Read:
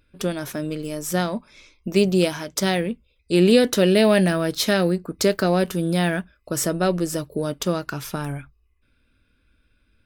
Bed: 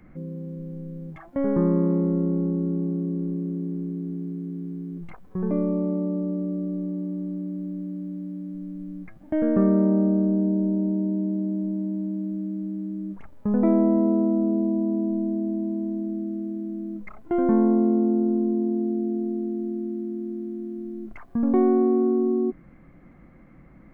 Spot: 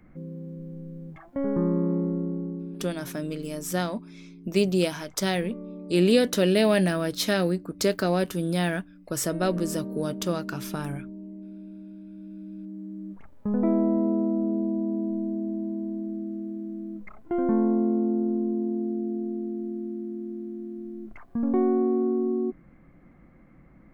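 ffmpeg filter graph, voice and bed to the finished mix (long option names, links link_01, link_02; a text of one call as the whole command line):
ffmpeg -i stem1.wav -i stem2.wav -filter_complex "[0:a]adelay=2600,volume=-4.5dB[link_01];[1:a]volume=8dB,afade=type=out:start_time=1.98:duration=0.91:silence=0.266073,afade=type=in:start_time=12.09:duration=1.39:silence=0.266073[link_02];[link_01][link_02]amix=inputs=2:normalize=0" out.wav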